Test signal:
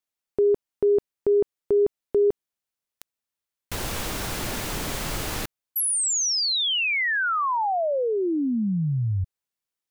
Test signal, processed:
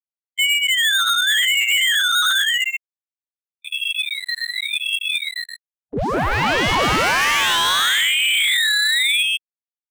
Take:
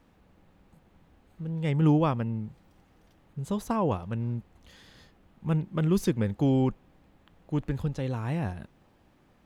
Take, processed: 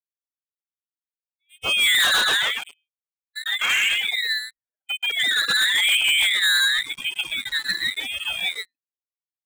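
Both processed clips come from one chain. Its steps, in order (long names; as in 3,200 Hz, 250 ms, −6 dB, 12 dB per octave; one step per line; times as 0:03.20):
spectral dynamics exaggerated over time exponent 3
dynamic equaliser 1,100 Hz, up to −5 dB, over −50 dBFS, Q 7.5
noise reduction from a noise print of the clip's start 25 dB
delay with pitch and tempo change per echo 337 ms, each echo +2 semitones, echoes 3
on a send: single-tap delay 126 ms −6.5 dB
on the sum: voice inversion scrambler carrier 3,000 Hz
leveller curve on the samples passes 5
ring modulator whose carrier an LFO sweeps 720 Hz, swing 60%, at 0.91 Hz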